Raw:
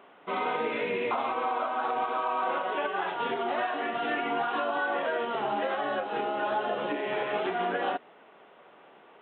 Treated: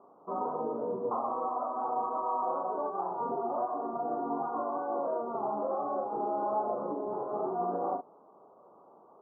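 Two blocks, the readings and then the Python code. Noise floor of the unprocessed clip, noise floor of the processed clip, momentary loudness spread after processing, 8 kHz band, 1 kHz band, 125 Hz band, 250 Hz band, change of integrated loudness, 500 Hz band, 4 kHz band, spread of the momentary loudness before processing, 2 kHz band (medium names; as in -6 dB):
-55 dBFS, -58 dBFS, 3 LU, no reading, -2.5 dB, -2.0 dB, -2.0 dB, -3.5 dB, -2.5 dB, under -40 dB, 2 LU, -26.0 dB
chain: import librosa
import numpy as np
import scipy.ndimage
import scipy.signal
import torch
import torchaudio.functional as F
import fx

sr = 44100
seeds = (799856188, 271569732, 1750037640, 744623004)

y = scipy.signal.sosfilt(scipy.signal.butter(12, 1200.0, 'lowpass', fs=sr, output='sos'), x)
y = fx.doubler(y, sr, ms=39.0, db=-5)
y = F.gain(torch.from_numpy(y), -3.0).numpy()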